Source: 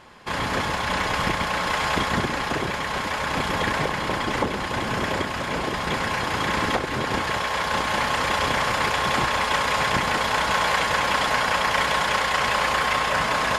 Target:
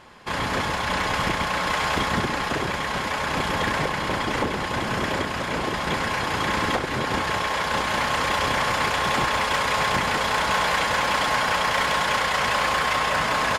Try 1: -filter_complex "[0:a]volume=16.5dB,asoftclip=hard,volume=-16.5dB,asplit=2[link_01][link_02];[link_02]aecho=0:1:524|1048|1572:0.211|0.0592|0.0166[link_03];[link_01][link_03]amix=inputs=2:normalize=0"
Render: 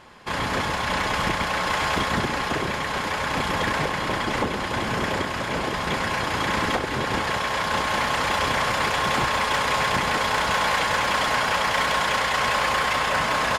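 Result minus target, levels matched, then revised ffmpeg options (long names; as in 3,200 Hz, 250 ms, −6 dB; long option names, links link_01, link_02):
echo 249 ms early
-filter_complex "[0:a]volume=16.5dB,asoftclip=hard,volume=-16.5dB,asplit=2[link_01][link_02];[link_02]aecho=0:1:773|1546|2319:0.211|0.0592|0.0166[link_03];[link_01][link_03]amix=inputs=2:normalize=0"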